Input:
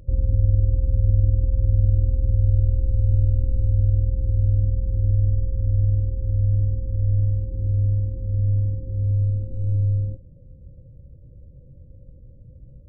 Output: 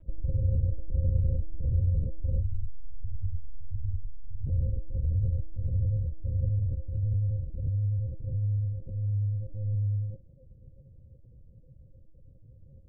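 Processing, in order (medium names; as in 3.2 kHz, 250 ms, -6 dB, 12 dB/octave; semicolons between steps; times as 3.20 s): 2.42–4.48 s: inverse Chebyshev low-pass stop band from 520 Hz, stop band 80 dB; LPC vocoder at 8 kHz pitch kept; trim -8 dB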